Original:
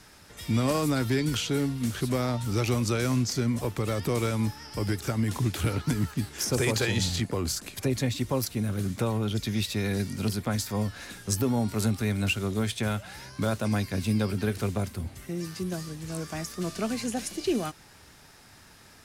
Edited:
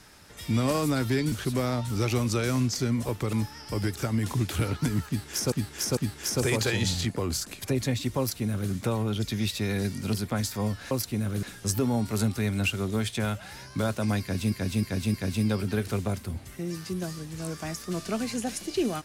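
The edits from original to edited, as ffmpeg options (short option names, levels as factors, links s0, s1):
-filter_complex "[0:a]asplit=10[s0][s1][s2][s3][s4][s5][s6][s7][s8][s9];[s0]atrim=end=1.322[s10];[s1]atrim=start=1.878:end=3.892[s11];[s2]atrim=start=4.378:end=6.572[s12];[s3]atrim=start=6.118:end=6.572[s13];[s4]atrim=start=6.118:end=11.062[s14];[s5]atrim=start=8.338:end=8.862[s15];[s6]atrim=start=11.058:end=14.152[s16];[s7]atrim=start=13.838:end=14.152[s17];[s8]atrim=start=13.838:end=14.152[s18];[s9]atrim=start=13.838[s19];[s10][s11]acrossfade=d=0.004:c1=hsin:c2=hsin[s20];[s20][s12]acrossfade=d=0.004:c1=hsin:c2=hsin[s21];[s21][s13]acrossfade=d=0.004:c1=hsin:c2=hsin[s22];[s22][s14]acrossfade=d=0.004:c1=hsin:c2=hsin[s23];[s23][s15]acrossfade=d=0.004:c1=hsin:c2=hsin[s24];[s24][s16]acrossfade=d=0.004:c1=hsin:c2=hsin[s25];[s25][s17]acrossfade=d=0.004:c1=hsin:c2=hsin[s26];[s26][s18]acrossfade=d=0.004:c1=hsin:c2=hsin[s27];[s27][s19]acrossfade=d=0.004:c1=hsin:c2=hsin"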